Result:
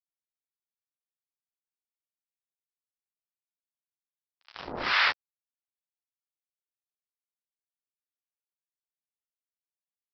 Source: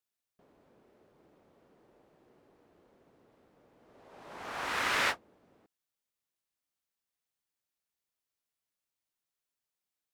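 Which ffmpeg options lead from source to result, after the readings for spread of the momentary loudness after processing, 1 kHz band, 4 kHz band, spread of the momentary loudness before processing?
18 LU, +2.0 dB, +5.5 dB, 17 LU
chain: -filter_complex "[0:a]highpass=frequency=86:poles=1,aresample=11025,acrusher=bits=4:mix=0:aa=0.5,aresample=44100,acrossover=split=800[link_01][link_02];[link_01]aeval=exprs='val(0)*(1-1/2+1/2*cos(2*PI*1.9*n/s))':channel_layout=same[link_03];[link_02]aeval=exprs='val(0)*(1-1/2-1/2*cos(2*PI*1.9*n/s))':channel_layout=same[link_04];[link_03][link_04]amix=inputs=2:normalize=0,volume=7dB"

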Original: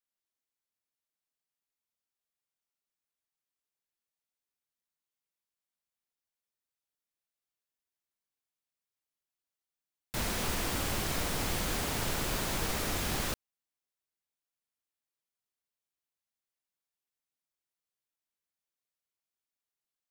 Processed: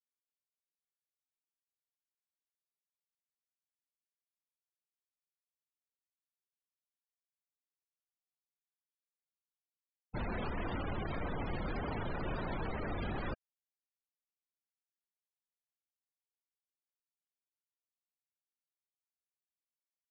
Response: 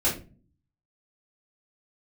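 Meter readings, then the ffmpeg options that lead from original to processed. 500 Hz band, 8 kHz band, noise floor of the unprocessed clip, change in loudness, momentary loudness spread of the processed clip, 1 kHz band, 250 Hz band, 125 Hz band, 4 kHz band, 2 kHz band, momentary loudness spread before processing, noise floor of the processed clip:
−3.0 dB, below −40 dB, below −85 dBFS, −7.0 dB, 3 LU, −4.0 dB, −2.5 dB, −2.5 dB, −16.5 dB, −7.0 dB, 3 LU, below −85 dBFS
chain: -af "adynamicsmooth=sensitivity=7.5:basefreq=5700,afftfilt=real='re*gte(hypot(re,im),0.0251)':imag='im*gte(hypot(re,im),0.0251)':win_size=1024:overlap=0.75,alimiter=level_in=5.5dB:limit=-24dB:level=0:latency=1:release=28,volume=-5.5dB"

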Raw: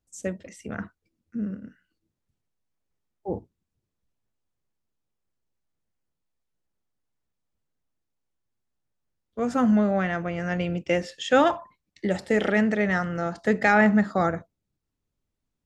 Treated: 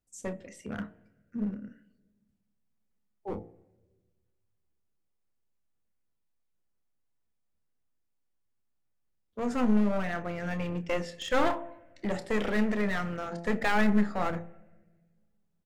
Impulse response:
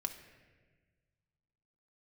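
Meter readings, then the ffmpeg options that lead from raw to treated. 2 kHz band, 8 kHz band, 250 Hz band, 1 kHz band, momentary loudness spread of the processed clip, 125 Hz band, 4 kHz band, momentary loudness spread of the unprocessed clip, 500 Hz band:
−7.5 dB, −4.5 dB, −5.0 dB, −6.5 dB, 17 LU, −5.5 dB, −4.0 dB, 17 LU, −7.0 dB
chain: -filter_complex "[0:a]bandreject=frequency=56.85:width_type=h:width=4,bandreject=frequency=113.7:width_type=h:width=4,bandreject=frequency=170.55:width_type=h:width=4,bandreject=frequency=227.4:width_type=h:width=4,bandreject=frequency=284.25:width_type=h:width=4,bandreject=frequency=341.1:width_type=h:width=4,bandreject=frequency=397.95:width_type=h:width=4,bandreject=frequency=454.8:width_type=h:width=4,bandreject=frequency=511.65:width_type=h:width=4,bandreject=frequency=568.5:width_type=h:width=4,bandreject=frequency=625.35:width_type=h:width=4,bandreject=frequency=682.2:width_type=h:width=4,bandreject=frequency=739.05:width_type=h:width=4,bandreject=frequency=795.9:width_type=h:width=4,bandreject=frequency=852.75:width_type=h:width=4,bandreject=frequency=909.6:width_type=h:width=4,bandreject=frequency=966.45:width_type=h:width=4,bandreject=frequency=1023.3:width_type=h:width=4,aeval=exprs='clip(val(0),-1,0.0398)':channel_layout=same,asplit=2[link_01][link_02];[link_02]adelay=29,volume=-12.5dB[link_03];[link_01][link_03]amix=inputs=2:normalize=0,asplit=2[link_04][link_05];[link_05]asuperstop=centerf=4800:order=4:qfactor=1.3[link_06];[1:a]atrim=start_sample=2205[link_07];[link_06][link_07]afir=irnorm=-1:irlink=0,volume=-11dB[link_08];[link_04][link_08]amix=inputs=2:normalize=0,volume=-5dB"

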